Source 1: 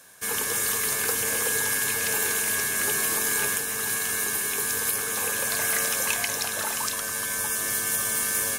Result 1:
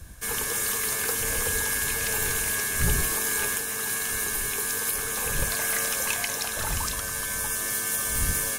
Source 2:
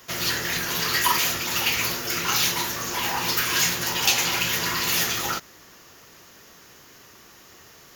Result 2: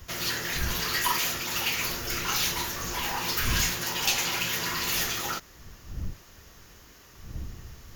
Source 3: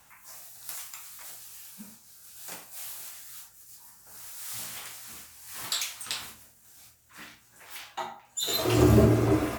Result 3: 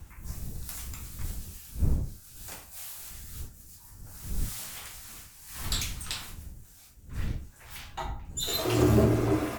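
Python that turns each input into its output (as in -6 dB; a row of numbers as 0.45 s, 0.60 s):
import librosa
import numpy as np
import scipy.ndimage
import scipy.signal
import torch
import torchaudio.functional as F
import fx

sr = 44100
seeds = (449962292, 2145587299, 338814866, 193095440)

y = fx.diode_clip(x, sr, knee_db=-11.0)
y = fx.dmg_wind(y, sr, seeds[0], corner_hz=81.0, level_db=-35.0)
y = y * 10.0 ** (-9 / 20.0) / np.max(np.abs(y))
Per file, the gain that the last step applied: -1.0 dB, -4.0 dB, -1.5 dB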